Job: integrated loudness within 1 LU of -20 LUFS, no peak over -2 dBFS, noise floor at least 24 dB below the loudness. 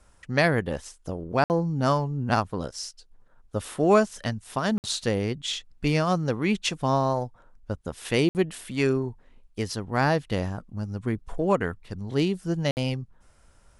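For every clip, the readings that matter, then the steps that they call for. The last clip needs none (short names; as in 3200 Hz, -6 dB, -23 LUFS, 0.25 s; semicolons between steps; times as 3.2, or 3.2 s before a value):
dropouts 4; longest dropout 59 ms; loudness -26.5 LUFS; peak -7.0 dBFS; loudness target -20.0 LUFS
-> interpolate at 1.44/4.78/8.29/12.71, 59 ms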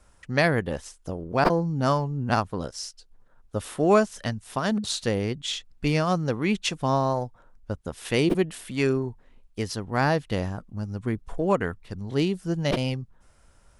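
dropouts 0; loudness -26.5 LUFS; peak -7.0 dBFS; loudness target -20.0 LUFS
-> gain +6.5 dB; limiter -2 dBFS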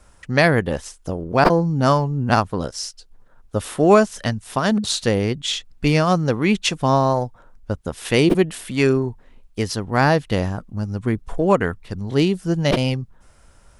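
loudness -20.0 LUFS; peak -2.0 dBFS; noise floor -52 dBFS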